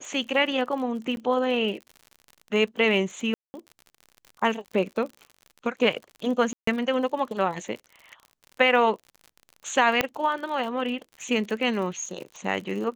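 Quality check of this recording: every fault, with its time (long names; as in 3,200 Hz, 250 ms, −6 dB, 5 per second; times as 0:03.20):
surface crackle 57 per second −35 dBFS
0:01.16–0:01.17: drop-out
0:03.34–0:03.54: drop-out 200 ms
0:06.53–0:06.67: drop-out 144 ms
0:10.01: click −7 dBFS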